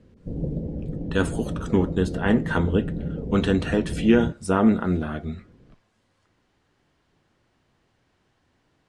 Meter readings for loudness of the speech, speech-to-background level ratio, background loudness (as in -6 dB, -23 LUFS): -23.5 LUFS, 8.0 dB, -31.5 LUFS